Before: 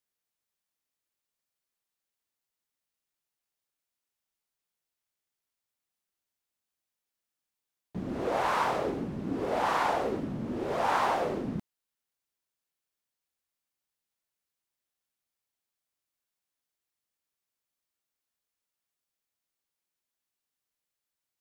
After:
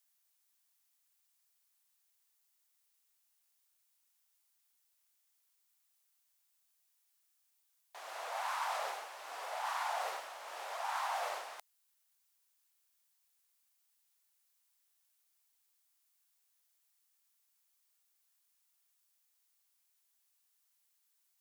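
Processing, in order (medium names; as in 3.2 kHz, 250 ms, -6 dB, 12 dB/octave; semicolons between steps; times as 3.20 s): steep high-pass 700 Hz 36 dB/octave; treble shelf 5 kHz +10 dB; reverse; compression 5:1, threshold -39 dBFS, peak gain reduction 14.5 dB; reverse; trim +3 dB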